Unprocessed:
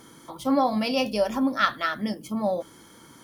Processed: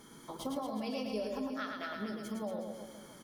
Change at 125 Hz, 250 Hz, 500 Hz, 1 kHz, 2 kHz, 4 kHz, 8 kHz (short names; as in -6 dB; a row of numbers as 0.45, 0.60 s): -10.5, -12.0, -12.0, -16.0, -14.5, -14.0, -8.0 dB